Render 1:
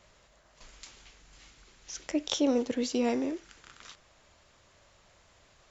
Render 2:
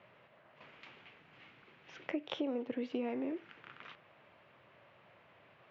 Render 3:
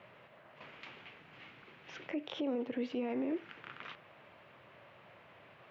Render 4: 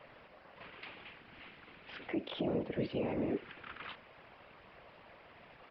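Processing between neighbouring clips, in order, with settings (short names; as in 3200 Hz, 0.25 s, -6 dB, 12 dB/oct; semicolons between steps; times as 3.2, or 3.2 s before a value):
elliptic band-pass 120–2700 Hz, stop band 60 dB; compressor 8:1, threshold -35 dBFS, peak gain reduction 13 dB; gain +1.5 dB
limiter -32.5 dBFS, peak gain reduction 10.5 dB; gain +4.5 dB
added noise violet -63 dBFS; whisperiser; downsampling 11025 Hz; gain +1 dB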